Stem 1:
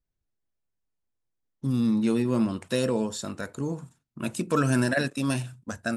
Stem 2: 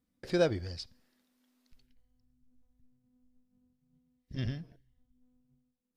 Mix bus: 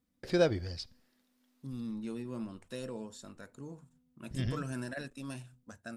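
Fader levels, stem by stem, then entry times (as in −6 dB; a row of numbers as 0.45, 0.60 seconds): −15.5, +0.5 decibels; 0.00, 0.00 seconds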